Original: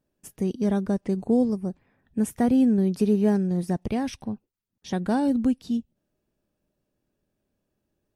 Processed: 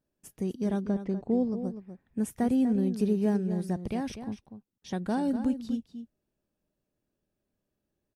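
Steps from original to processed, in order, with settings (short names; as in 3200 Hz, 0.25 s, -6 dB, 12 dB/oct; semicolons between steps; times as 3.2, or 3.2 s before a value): 0.82–1.64 air absorption 120 m; outdoor echo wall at 42 m, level -10 dB; gain -5.5 dB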